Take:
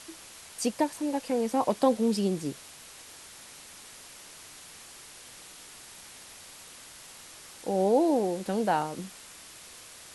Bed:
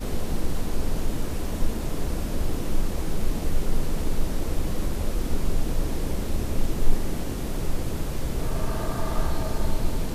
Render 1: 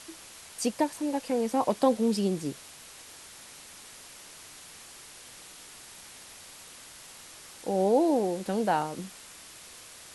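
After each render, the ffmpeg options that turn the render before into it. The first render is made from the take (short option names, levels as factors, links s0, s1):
-af anull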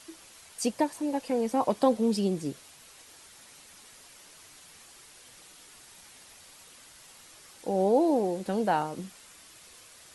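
-af "afftdn=nr=6:nf=-49"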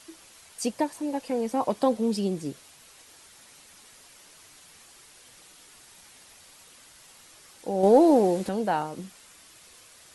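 -filter_complex "[0:a]asettb=1/sr,asplit=3[s0][s1][s2];[s0]atrim=end=7.834[s3];[s1]atrim=start=7.83:end=8.49,asetpts=PTS-STARTPTS,afade=t=in:d=0.004:c=qsin,afade=t=out:st=0.656:d=0.004:c=qsin,acontrast=62[s4];[s2]atrim=start=8.486[s5];[s3][s4]acrossfade=d=0.004:c1=hsin:c2=qsin[s6];[s6][s5]acrossfade=d=0.004:c1=qsin:c2=hsin"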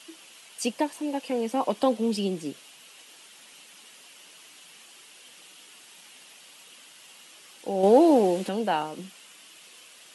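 -af "highpass=f=170:w=0.5412,highpass=f=170:w=1.3066,equalizer=f=2900:w=2.8:g=9.5"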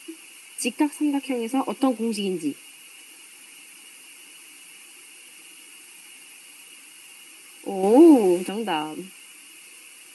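-af "superequalizer=6b=2.51:8b=0.447:12b=2.24:13b=0.398:16b=2.51"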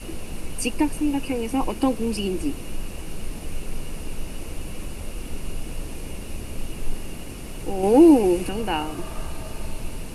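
-filter_complex "[1:a]volume=0.473[s0];[0:a][s0]amix=inputs=2:normalize=0"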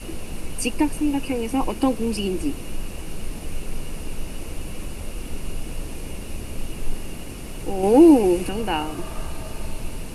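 -af "volume=1.12"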